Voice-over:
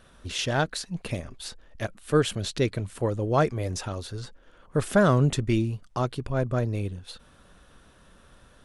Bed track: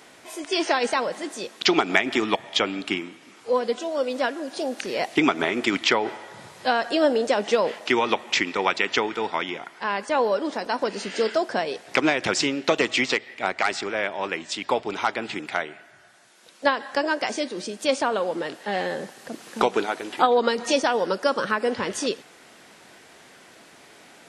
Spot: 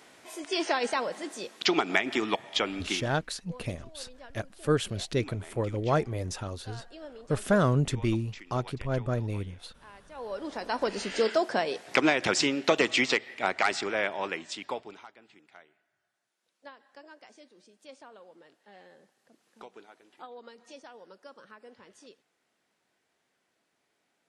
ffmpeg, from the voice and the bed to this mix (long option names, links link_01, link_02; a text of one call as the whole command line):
ffmpeg -i stem1.wav -i stem2.wav -filter_complex "[0:a]adelay=2550,volume=-3.5dB[link_01];[1:a]volume=17dB,afade=type=out:start_time=2.82:duration=0.51:silence=0.105925,afade=type=in:start_time=10.14:duration=0.79:silence=0.0749894,afade=type=out:start_time=14.02:duration=1.05:silence=0.0595662[link_02];[link_01][link_02]amix=inputs=2:normalize=0" out.wav